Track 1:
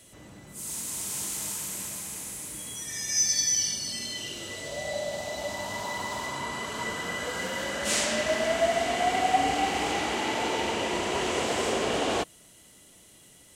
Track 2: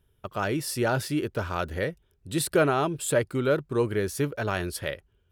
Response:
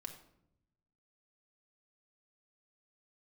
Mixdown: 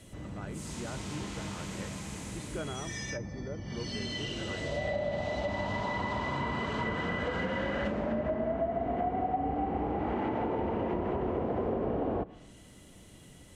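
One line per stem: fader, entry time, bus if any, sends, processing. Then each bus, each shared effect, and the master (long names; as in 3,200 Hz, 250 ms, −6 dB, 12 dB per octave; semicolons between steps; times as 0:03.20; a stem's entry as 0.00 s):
0.0 dB, 0.00 s, send −11 dB, low-shelf EQ 230 Hz +11 dB
−17.0 dB, 0.00 s, no send, no processing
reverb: on, RT60 0.75 s, pre-delay 4 ms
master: treble cut that deepens with the level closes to 890 Hz, closed at −21 dBFS; high-shelf EQ 4,400 Hz −9 dB; downward compressor, threshold −28 dBFS, peak gain reduction 11 dB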